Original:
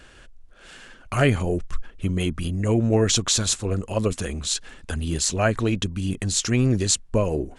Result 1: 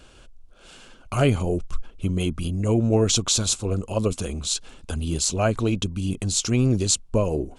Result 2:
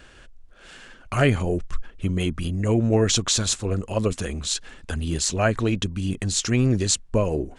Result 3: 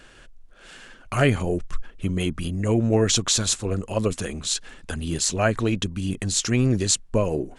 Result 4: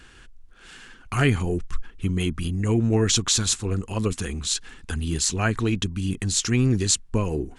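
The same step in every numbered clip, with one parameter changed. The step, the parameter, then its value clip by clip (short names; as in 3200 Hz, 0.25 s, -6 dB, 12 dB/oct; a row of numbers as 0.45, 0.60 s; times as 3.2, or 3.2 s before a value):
bell, frequency: 1800, 14000, 65, 590 Hz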